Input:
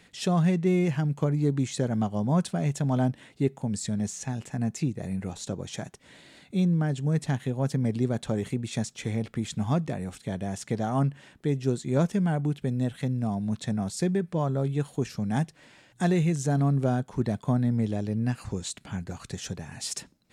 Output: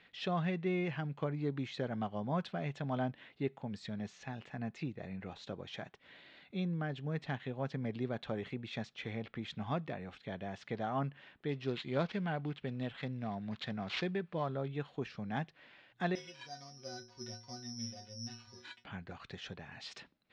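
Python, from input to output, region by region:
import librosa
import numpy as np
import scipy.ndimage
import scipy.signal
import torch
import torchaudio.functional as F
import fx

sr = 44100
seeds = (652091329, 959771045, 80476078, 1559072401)

y = fx.chain(x, sr, fx.high_shelf(hz=3600.0, db=7.0),
    fx.resample_bad(factor=4, down='none', up='hold'), at=(11.49, 14.57))
y = fx.chain(y, sr, fx.stiff_resonator(f0_hz=110.0, decay_s=0.51, stiffness=0.03),
    fx.resample_bad(factor=8, down='none', up='zero_stuff'), at=(16.15, 18.84))
y = scipy.signal.sosfilt(scipy.signal.butter(4, 3700.0, 'lowpass', fs=sr, output='sos'), y)
y = fx.low_shelf(y, sr, hz=430.0, db=-11.5)
y = fx.notch(y, sr, hz=920.0, q=23.0)
y = y * librosa.db_to_amplitude(-3.0)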